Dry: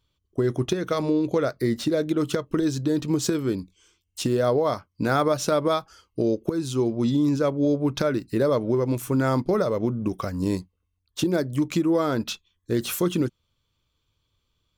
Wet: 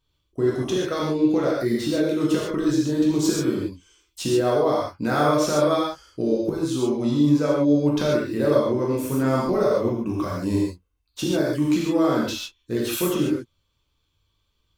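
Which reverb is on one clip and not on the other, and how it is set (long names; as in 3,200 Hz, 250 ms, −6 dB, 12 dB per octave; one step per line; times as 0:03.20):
reverb whose tail is shaped and stops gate 170 ms flat, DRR −5 dB
level −4 dB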